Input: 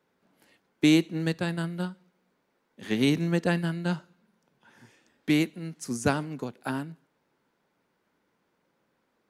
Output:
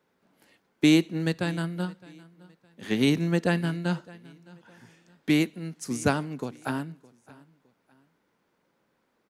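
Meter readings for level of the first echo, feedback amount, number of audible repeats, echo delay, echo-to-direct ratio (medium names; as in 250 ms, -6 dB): -22.5 dB, 33%, 2, 613 ms, -22.0 dB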